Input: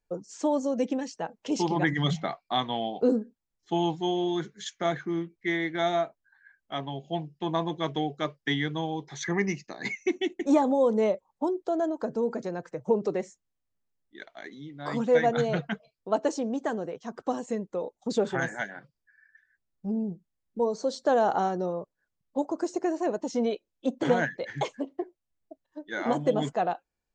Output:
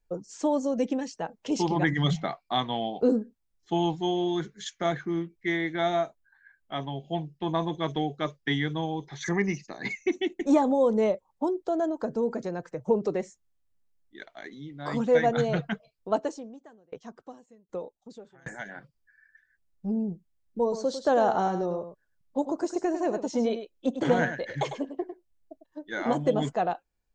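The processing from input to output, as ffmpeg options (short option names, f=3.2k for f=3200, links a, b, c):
-filter_complex "[0:a]asettb=1/sr,asplit=3[a][b][c];[a]atrim=end=5.614[d];[b]atrim=start=5.61:end=10.27,asetpts=PTS-STARTPTS,afade=t=in:d=0.004:c=qsin,afade=t=out:st=4.656:d=0.004:c=qsin,acrossover=split=5600[e][f];[f]adelay=50[g];[e][g]amix=inputs=2:normalize=0,atrim=end_sample=205506[h];[c]atrim=start=10.266[i];[d][h]acrossfade=d=0.004:c1=hsin:c2=qsin[j];[j][i]acrossfade=d=0.004:c1=qsin:c2=hsin,asplit=3[k][l][m];[k]afade=t=out:st=16.19:d=0.02[n];[l]aeval=exprs='val(0)*pow(10,-32*if(lt(mod(1.3*n/s,1),2*abs(1.3)/1000),1-mod(1.3*n/s,1)/(2*abs(1.3)/1000),(mod(1.3*n/s,1)-2*abs(1.3)/1000)/(1-2*abs(1.3)/1000))/20)':c=same,afade=t=in:st=16.19:d=0.02,afade=t=out:st=18.65:d=0.02[o];[m]afade=t=in:st=18.65:d=0.02[p];[n][o][p]amix=inputs=3:normalize=0,asettb=1/sr,asplit=3[q][r][s];[q]atrim=end=20.624[t];[r]atrim=start=20.62:end=25.64,asetpts=PTS-STARTPTS,afade=t=in:d=0.004:c=qsin,afade=t=out:st=5.016:d=0.004:c=qsin,aecho=1:1:101:0.335,atrim=end_sample=221382[u];[s]atrim=start=25.636[v];[t][u]acrossfade=d=0.004:c1=hsin:c2=qsin[w];[w][v]acrossfade=d=0.004:c1=qsin:c2=hsin,lowshelf=f=70:g=11"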